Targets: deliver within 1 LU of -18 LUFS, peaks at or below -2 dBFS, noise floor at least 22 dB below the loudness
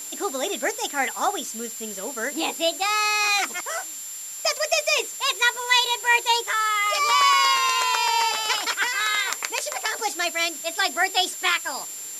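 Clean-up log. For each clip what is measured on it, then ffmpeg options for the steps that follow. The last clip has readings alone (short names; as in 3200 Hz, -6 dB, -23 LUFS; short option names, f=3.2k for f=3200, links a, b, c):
steady tone 7300 Hz; tone level -34 dBFS; noise floor -35 dBFS; noise floor target -44 dBFS; loudness -22.0 LUFS; peak -4.5 dBFS; loudness target -18.0 LUFS
-> -af "bandreject=f=7.3k:w=30"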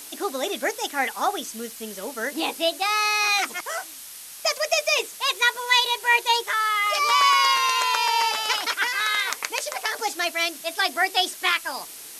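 steady tone none; noise floor -41 dBFS; noise floor target -44 dBFS
-> -af "afftdn=nr=6:nf=-41"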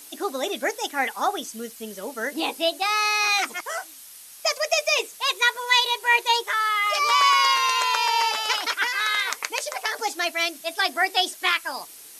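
noise floor -45 dBFS; loudness -22.0 LUFS; peak -5.0 dBFS; loudness target -18.0 LUFS
-> -af "volume=4dB,alimiter=limit=-2dB:level=0:latency=1"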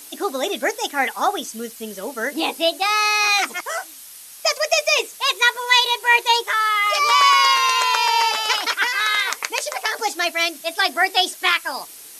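loudness -18.0 LUFS; peak -2.0 dBFS; noise floor -41 dBFS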